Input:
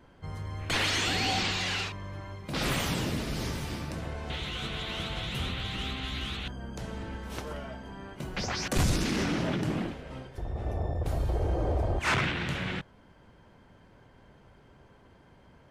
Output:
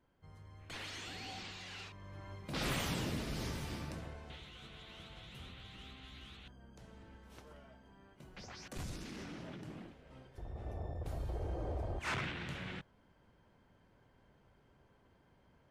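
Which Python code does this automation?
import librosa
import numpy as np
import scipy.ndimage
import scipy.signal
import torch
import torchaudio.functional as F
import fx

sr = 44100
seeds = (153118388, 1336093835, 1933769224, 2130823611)

y = fx.gain(x, sr, db=fx.line((1.69, -18.0), (2.33, -7.0), (3.88, -7.0), (4.49, -18.0), (9.93, -18.0), (10.41, -11.0)))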